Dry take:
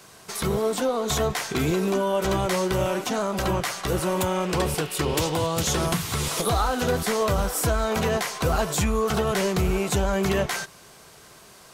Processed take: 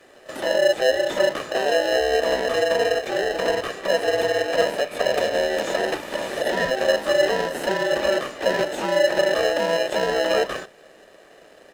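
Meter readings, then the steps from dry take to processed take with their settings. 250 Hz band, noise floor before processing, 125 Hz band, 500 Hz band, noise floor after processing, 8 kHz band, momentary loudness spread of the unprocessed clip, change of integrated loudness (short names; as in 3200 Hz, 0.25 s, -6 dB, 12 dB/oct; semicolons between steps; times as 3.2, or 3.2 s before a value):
-5.0 dB, -49 dBFS, -14.5 dB, +5.5 dB, -50 dBFS, -6.5 dB, 3 LU, +2.5 dB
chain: band inversion scrambler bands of 1000 Hz; bell 5100 Hz -12.5 dB 1.2 oct; notches 50/100/150/200/250 Hz; comb 1.7 ms, depth 74%; in parallel at +3 dB: sample-and-hold 38×; on the sum: three-band isolator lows -20 dB, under 240 Hz, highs -15 dB, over 6700 Hz; pre-echo 32 ms -15 dB; gain -2.5 dB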